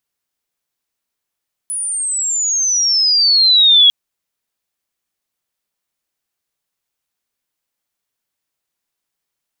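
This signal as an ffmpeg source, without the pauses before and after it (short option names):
-f lavfi -i "aevalsrc='pow(10,(-19+14*t/2.2)/20)*sin(2*PI*10000*2.2/log(3300/10000)*(exp(log(3300/10000)*t/2.2)-1))':d=2.2:s=44100"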